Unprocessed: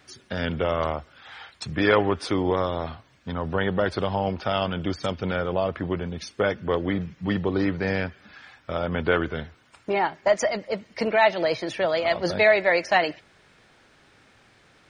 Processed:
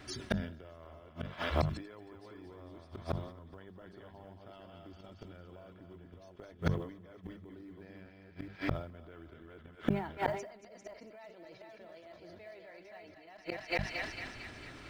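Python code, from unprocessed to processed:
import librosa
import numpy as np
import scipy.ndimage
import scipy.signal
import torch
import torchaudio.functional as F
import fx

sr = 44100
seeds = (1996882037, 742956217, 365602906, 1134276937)

p1 = fx.reverse_delay(x, sr, ms=424, wet_db=-4)
p2 = fx.notch(p1, sr, hz=6600.0, q=29.0)
p3 = p2 + 0.32 * np.pad(p2, (int(3.0 * sr / 1000.0), 0))[:len(p2)]
p4 = fx.over_compress(p3, sr, threshold_db=-23.0, ratio=-0.5)
p5 = p3 + F.gain(torch.from_numpy(p4), -1.0).numpy()
p6 = fx.high_shelf(p5, sr, hz=6100.0, db=-3.0)
p7 = fx.echo_thinned(p6, sr, ms=226, feedback_pct=62, hz=910.0, wet_db=-6)
p8 = fx.gate_flip(p7, sr, shuts_db=-14.0, range_db=-33)
p9 = fx.quant_float(p8, sr, bits=4)
p10 = fx.low_shelf(p9, sr, hz=330.0, db=9.5)
p11 = fx.hum_notches(p10, sr, base_hz=50, count=4)
p12 = fx.sustainer(p11, sr, db_per_s=87.0)
y = F.gain(torch.from_numpy(p12), -5.0).numpy()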